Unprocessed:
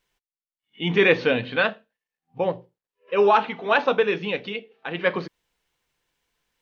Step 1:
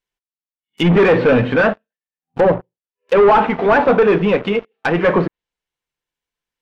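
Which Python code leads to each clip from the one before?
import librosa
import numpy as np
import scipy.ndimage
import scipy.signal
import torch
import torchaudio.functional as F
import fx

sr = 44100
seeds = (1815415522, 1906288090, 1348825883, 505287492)

y = fx.leveller(x, sr, passes=5)
y = fx.env_lowpass_down(y, sr, base_hz=1500.0, full_db=-11.5)
y = y * 10.0 ** (-1.5 / 20.0)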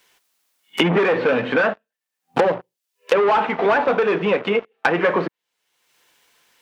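y = fx.highpass(x, sr, hz=470.0, slope=6)
y = fx.band_squash(y, sr, depth_pct=100)
y = y * 10.0 ** (-2.5 / 20.0)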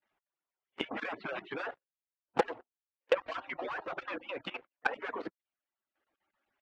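y = fx.hpss_only(x, sr, part='percussive')
y = fx.env_lowpass(y, sr, base_hz=1400.0, full_db=-18.5)
y = fx.level_steps(y, sr, step_db=15)
y = y * 10.0 ** (-7.5 / 20.0)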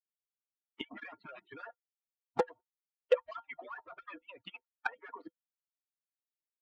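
y = fx.bin_expand(x, sr, power=2.0)
y = fx.small_body(y, sr, hz=(500.0, 910.0, 1400.0, 3200.0), ring_ms=90, db=9)
y = y * 10.0 ** (-2.5 / 20.0)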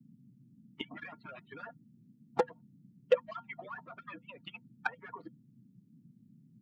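y = fx.dmg_noise_band(x, sr, seeds[0], low_hz=120.0, high_hz=250.0, level_db=-61.0)
y = y * 10.0 ** (1.0 / 20.0)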